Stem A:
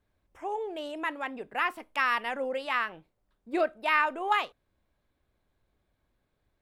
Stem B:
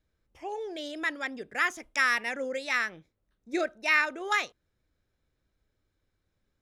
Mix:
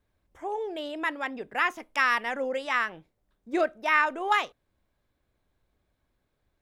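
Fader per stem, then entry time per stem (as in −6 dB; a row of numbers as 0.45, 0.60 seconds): 0.0, −8.5 decibels; 0.00, 0.00 seconds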